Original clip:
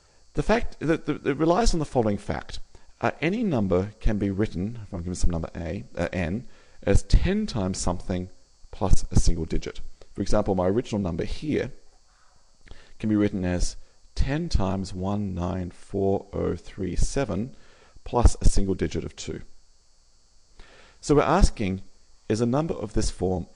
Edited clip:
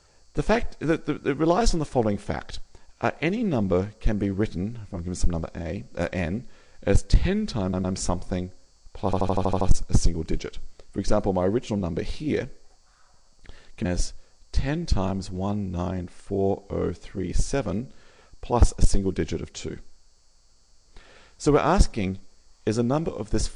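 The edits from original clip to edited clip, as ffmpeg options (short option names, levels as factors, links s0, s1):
-filter_complex "[0:a]asplit=11[s0][s1][s2][s3][s4][s5][s6][s7][s8][s9][s10];[s0]atrim=end=7.732[s11];[s1]atrim=start=7.618:end=7.732[s12];[s2]atrim=start=7.618:end=8.912[s13];[s3]atrim=start=8.828:end=8.912[s14];[s4]atrim=start=8.828:end=8.912[s15];[s5]atrim=start=8.828:end=8.912[s16];[s6]atrim=start=8.828:end=8.912[s17];[s7]atrim=start=8.828:end=8.912[s18];[s8]atrim=start=8.828:end=8.912[s19];[s9]atrim=start=8.828:end=13.072[s20];[s10]atrim=start=13.478[s21];[s11][s12]acrossfade=d=0.004:c1=hsin:c2=hsin[s22];[s22][s13]acrossfade=d=0.004:c1=hsin:c2=hsin[s23];[s23][s14]acrossfade=d=0.004:c1=hsin:c2=hsin[s24];[s24][s15]acrossfade=d=0.004:c1=hsin:c2=hsin[s25];[s25][s16]acrossfade=d=0.004:c1=hsin:c2=hsin[s26];[s26][s17]acrossfade=d=0.004:c1=hsin:c2=hsin[s27];[s27][s18]acrossfade=d=0.004:c1=hsin:c2=hsin[s28];[s28][s19]acrossfade=d=0.004:c1=hsin:c2=hsin[s29];[s29][s20]acrossfade=d=0.004:c1=hsin:c2=hsin[s30];[s30][s21]acrossfade=d=0.004:c1=hsin:c2=hsin"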